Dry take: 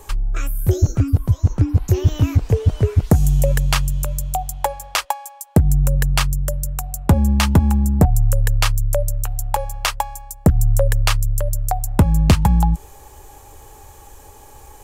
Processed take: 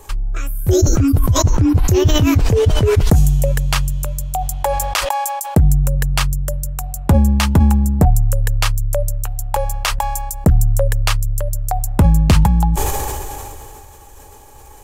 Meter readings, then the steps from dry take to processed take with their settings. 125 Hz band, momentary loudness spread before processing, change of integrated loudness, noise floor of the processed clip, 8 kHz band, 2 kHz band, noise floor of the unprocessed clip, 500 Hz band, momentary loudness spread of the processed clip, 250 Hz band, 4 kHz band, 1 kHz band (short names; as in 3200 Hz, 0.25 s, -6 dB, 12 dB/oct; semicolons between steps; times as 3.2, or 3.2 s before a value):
+1.5 dB, 9 LU, +2.0 dB, -40 dBFS, +4.0 dB, +2.0 dB, -43 dBFS, +5.5 dB, 10 LU, +3.5 dB, +2.5 dB, +3.0 dB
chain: sustainer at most 22 dB/s